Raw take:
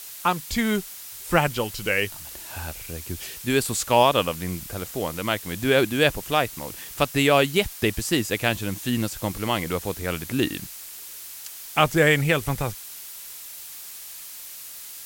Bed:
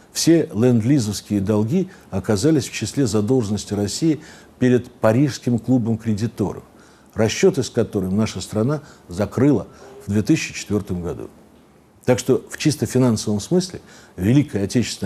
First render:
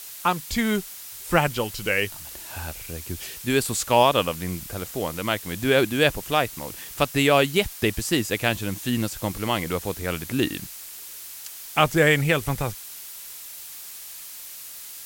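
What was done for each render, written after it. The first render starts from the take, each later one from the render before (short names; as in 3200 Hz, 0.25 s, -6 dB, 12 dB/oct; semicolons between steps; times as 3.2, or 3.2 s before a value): nothing audible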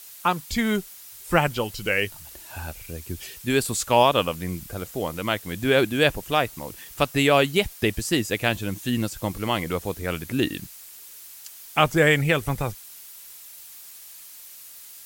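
denoiser 6 dB, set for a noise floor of -40 dBFS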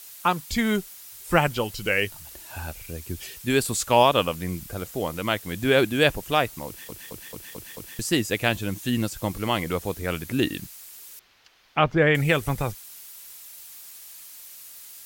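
6.67 stutter in place 0.22 s, 6 plays; 11.19–12.15 air absorption 270 m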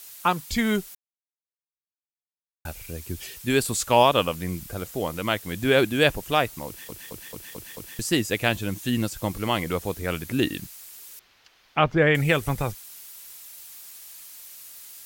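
0.95–2.65 mute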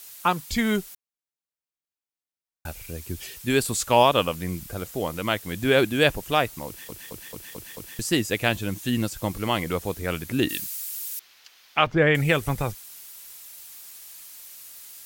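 10.49–11.87 tilt +3 dB/oct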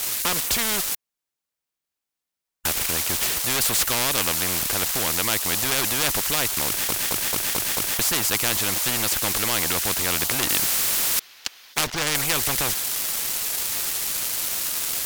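sample leveller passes 3; spectral compressor 4:1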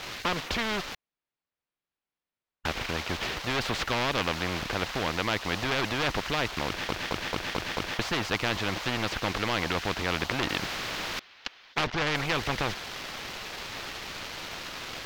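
air absorption 240 m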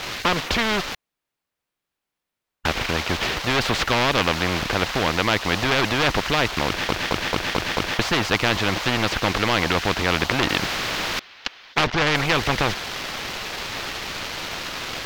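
gain +8 dB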